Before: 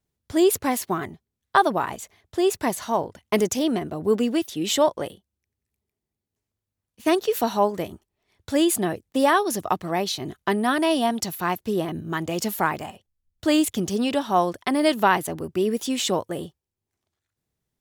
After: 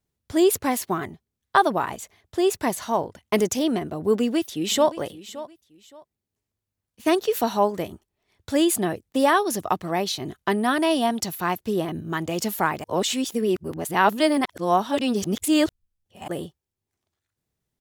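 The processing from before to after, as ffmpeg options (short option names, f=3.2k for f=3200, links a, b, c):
-filter_complex "[0:a]asplit=2[a][b];[b]afade=t=in:st=4.14:d=0.01,afade=t=out:st=4.9:d=0.01,aecho=0:1:570|1140:0.158489|0.0396223[c];[a][c]amix=inputs=2:normalize=0,asplit=3[d][e][f];[d]atrim=end=12.842[g];[e]atrim=start=12.838:end=16.282,asetpts=PTS-STARTPTS,areverse[h];[f]atrim=start=16.278[i];[g][h]acrossfade=d=0.004:c1=hsin:c2=hsin[j];[j][i]acrossfade=d=0.004:c1=hsin:c2=hsin"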